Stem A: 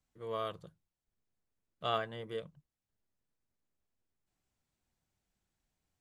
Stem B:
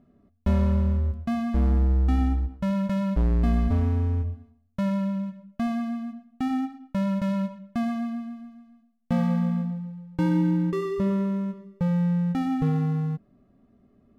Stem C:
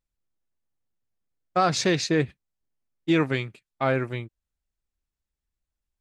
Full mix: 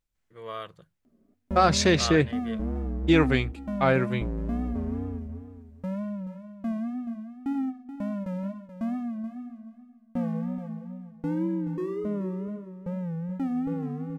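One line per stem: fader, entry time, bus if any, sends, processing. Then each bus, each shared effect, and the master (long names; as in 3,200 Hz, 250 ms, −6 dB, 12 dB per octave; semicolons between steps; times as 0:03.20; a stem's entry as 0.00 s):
−1.5 dB, 0.15 s, no send, no echo send, parametric band 1,900 Hz +8 dB 1.2 octaves
−10.0 dB, 1.05 s, no send, echo send −11.5 dB, octave-band graphic EQ 125/250/500/4,000 Hz −7/+8/+6/−7 dB; tape wow and flutter 110 cents
+1.5 dB, 0.00 s, no send, no echo send, no processing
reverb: not used
echo: repeating echo 429 ms, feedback 16%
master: no processing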